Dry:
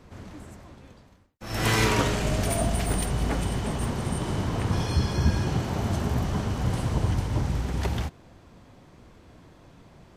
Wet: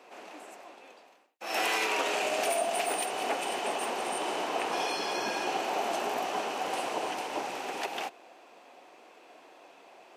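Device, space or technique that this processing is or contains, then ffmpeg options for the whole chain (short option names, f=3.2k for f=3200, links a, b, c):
laptop speaker: -af "highpass=f=360:w=0.5412,highpass=f=360:w=1.3066,equalizer=f=750:t=o:w=0.45:g=8,equalizer=f=2.6k:t=o:w=0.33:g=9.5,alimiter=limit=-19dB:level=0:latency=1:release=186"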